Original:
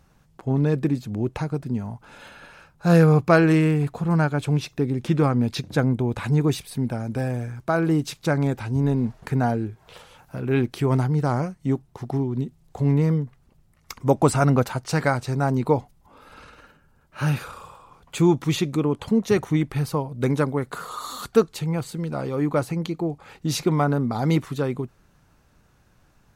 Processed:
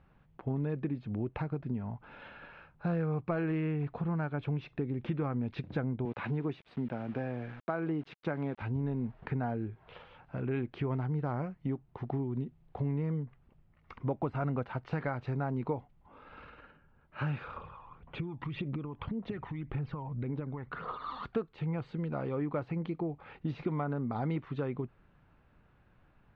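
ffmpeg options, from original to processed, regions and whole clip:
-filter_complex "[0:a]asettb=1/sr,asplit=3[s0][s1][s2];[s0]atrim=end=6.054[s3];[s1]atrim=start=6.05:end=8.62,asetpts=PTS-STARTPTS,afade=t=in:d=0.004:c=qsin,afade=t=out:st=2.566:d=0.004:c=qsin,highpass=160,aeval=exprs='val(0)*gte(abs(val(0)),0.00944)':c=same[s4];[s2]atrim=start=8.616[s5];[s3][s4]acrossfade=d=0.004:c1=hsin:c2=qsin[s6];[s6][s5]acrossfade=d=0.004:c1=qsin:c2=hsin,asettb=1/sr,asplit=3[s7][s8][s9];[s7]atrim=end=17.564[s10];[s8]atrim=start=17.56:end=21.24,asetpts=PTS-STARTPTS,afade=t=in:d=0.004:c=qsin,afade=t=out:st=3.676:d=0.004:c=qsin,lowpass=3700,acompressor=threshold=0.0316:ratio=16:attack=3.2:release=140:knee=1:detection=peak,aphaser=in_gain=1:out_gain=1:delay=1.2:decay=0.55:speed=1.8:type=triangular[s11];[s9]atrim=start=21.236[s12];[s10][s11]acrossfade=d=0.004:c1=hsin:c2=qsin[s13];[s13][s12]acrossfade=d=0.004:c1=qsin:c2=hsin,deesser=0.75,lowpass=f=3000:w=0.5412,lowpass=f=3000:w=1.3066,acompressor=threshold=0.0501:ratio=4,volume=0.562"

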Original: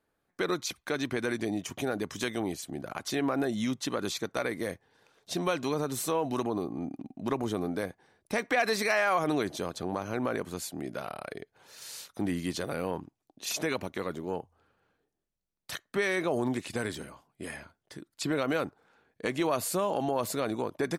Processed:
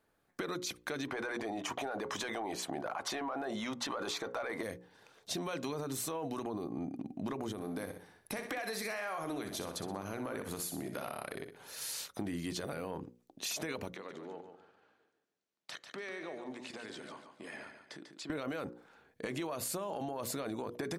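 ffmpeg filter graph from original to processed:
-filter_complex "[0:a]asettb=1/sr,asplit=3[s0][s1][s2];[s0]atrim=end=1.084[s3];[s1]atrim=start=1.08:end=4.63,asetpts=PTS-STARTPTS,afade=t=in:d=0.004:c=qsin,afade=t=out:st=3.546:d=0.004:c=qsin,asplit=2[s4][s5];[s5]highpass=f=720:p=1,volume=3.55,asoftclip=type=tanh:threshold=0.158[s6];[s4][s6]amix=inputs=2:normalize=0,lowpass=f=3900:p=1,volume=0.501,equalizer=f=850:w=0.88:g=11.5[s7];[s2]atrim=start=4.626[s8];[s3][s7]acrossfade=d=0.004:c1=hsin:c2=qsin[s9];[s9][s8]acrossfade=d=0.004:c1=qsin:c2=hsin,asettb=1/sr,asplit=3[s10][s11][s12];[s10]atrim=end=7.524[s13];[s11]atrim=start=7.52:end=11.94,asetpts=PTS-STARTPTS,afade=t=in:d=0.004:c=qsin,afade=t=out:st=4.416:d=0.004:c=qsin,equalizer=f=11000:w=3.7:g=12,acompressor=threshold=0.0126:ratio=2.5:attack=3.2:release=140:knee=1:detection=peak,aecho=1:1:62|124|186|248:0.376|0.147|0.0572|0.0223,atrim=end_sample=194922[s14];[s12]atrim=start=11.936[s15];[s13][s14]acrossfade=d=0.004:c1=hsin:c2=qsin[s16];[s16][s15]acrossfade=d=0.004:c1=qsin:c2=hsin,asettb=1/sr,asplit=3[s17][s18][s19];[s17]atrim=end=13.944[s20];[s18]atrim=start=13.94:end=18.3,asetpts=PTS-STARTPTS,afade=t=in:d=0.004:c=qsin,afade=t=out:st=4.356:d=0.004:c=qsin,acompressor=threshold=0.00562:ratio=4:attack=3.2:release=140:knee=1:detection=peak,highpass=230,lowpass=6200,aecho=1:1:144|288|432|576:0.398|0.127|0.0408|0.013,atrim=end_sample=192276[s21];[s19]atrim=start=18.296[s22];[s20][s21]acrossfade=d=0.004:c1=hsin:c2=qsin[s23];[s23][s22]acrossfade=d=0.004:c1=qsin:c2=hsin,bandreject=f=60:t=h:w=6,bandreject=f=120:t=h:w=6,bandreject=f=180:t=h:w=6,bandreject=f=240:t=h:w=6,bandreject=f=300:t=h:w=6,bandreject=f=360:t=h:w=6,bandreject=f=420:t=h:w=6,bandreject=f=480:t=h:w=6,bandreject=f=540:t=h:w=6,alimiter=level_in=1.12:limit=0.0631:level=0:latency=1:release=15,volume=0.891,acompressor=threshold=0.0126:ratio=6,volume=1.41"

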